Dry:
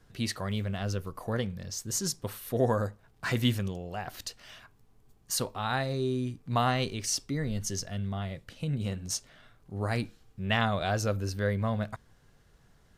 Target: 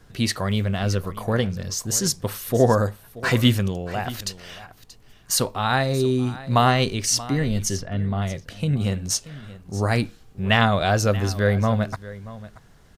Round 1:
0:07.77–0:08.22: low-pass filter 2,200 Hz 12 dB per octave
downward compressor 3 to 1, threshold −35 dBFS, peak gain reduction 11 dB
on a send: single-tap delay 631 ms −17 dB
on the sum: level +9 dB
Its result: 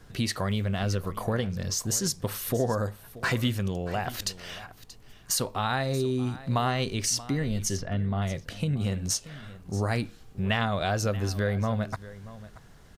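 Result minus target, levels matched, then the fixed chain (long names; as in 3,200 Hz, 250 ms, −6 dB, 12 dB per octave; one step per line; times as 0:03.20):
downward compressor: peak gain reduction +11 dB
0:07.77–0:08.22: low-pass filter 2,200 Hz 12 dB per octave
on a send: single-tap delay 631 ms −17 dB
on the sum: level +9 dB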